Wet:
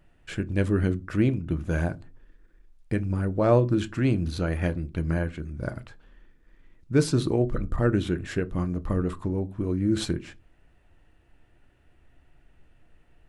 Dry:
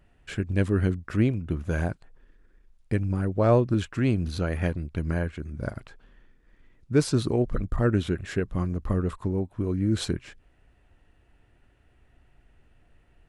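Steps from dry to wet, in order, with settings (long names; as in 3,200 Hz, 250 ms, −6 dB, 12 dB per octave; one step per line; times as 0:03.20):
on a send: high-shelf EQ 4,800 Hz −6 dB + convolution reverb RT60 0.30 s, pre-delay 3 ms, DRR 11.5 dB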